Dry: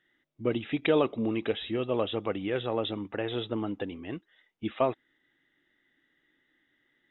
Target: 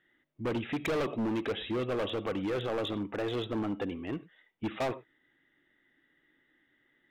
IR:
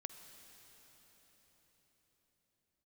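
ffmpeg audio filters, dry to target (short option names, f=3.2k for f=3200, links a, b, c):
-filter_complex "[0:a]asplit=2[a][b];[1:a]atrim=start_sample=2205,afade=t=out:st=0.16:d=0.01,atrim=end_sample=7497,lowpass=3.5k[c];[b][c]afir=irnorm=-1:irlink=0,volume=8.5dB[d];[a][d]amix=inputs=2:normalize=0,asoftclip=type=hard:threshold=-22dB,volume=-6dB"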